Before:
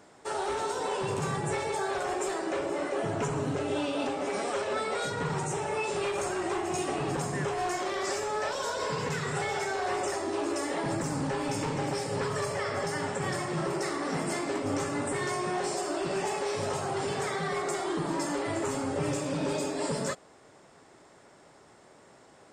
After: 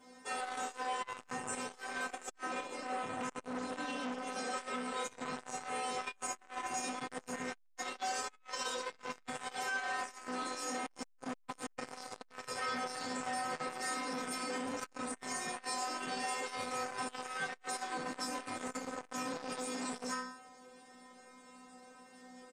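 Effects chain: metallic resonator 250 Hz, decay 0.67 s, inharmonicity 0.002; harmoniser -5 st -15 dB; on a send at -21.5 dB: reverb, pre-delay 3 ms; on the sum: limiter -43.5 dBFS, peak gain reduction 7.5 dB; core saturation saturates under 880 Hz; gain +17 dB

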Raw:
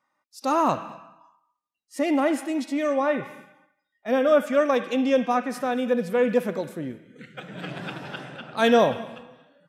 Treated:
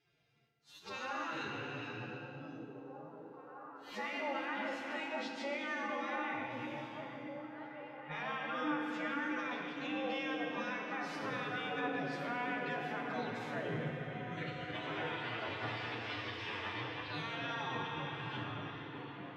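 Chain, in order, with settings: spectral gate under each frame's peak -15 dB weak; bell 130 Hz +11.5 dB 0.69 oct; compressor 4:1, threshold -50 dBFS, peak gain reduction 20 dB; limiter -43 dBFS, peak gain reduction 8.5 dB; time stretch by phase-locked vocoder 2×; air absorption 220 m; delay with a stepping band-pass 0.616 s, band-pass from 220 Hz, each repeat 0.7 oct, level -0.5 dB; FDN reverb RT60 2.5 s, low-frequency decay 1.2×, high-frequency decay 0.85×, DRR 2 dB; gain +13.5 dB

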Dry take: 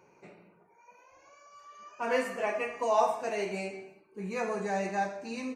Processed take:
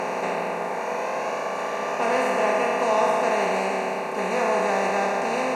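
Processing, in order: per-bin compression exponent 0.2

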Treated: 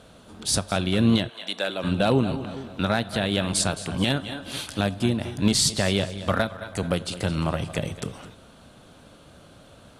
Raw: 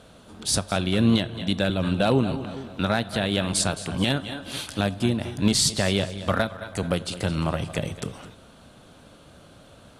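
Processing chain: 1.28–1.83 HPF 860 Hz -> 360 Hz 12 dB/oct

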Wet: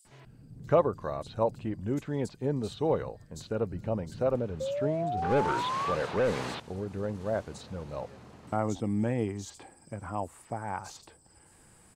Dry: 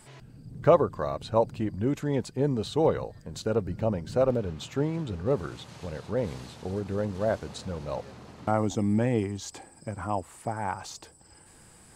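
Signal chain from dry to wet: 5.17–6.55 overdrive pedal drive 26 dB, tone 2500 Hz, clips at -14.5 dBFS; 4.55–5.9 painted sound rise 520–1200 Hz -28 dBFS; bands offset in time highs, lows 50 ms, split 4400 Hz; gain -4 dB

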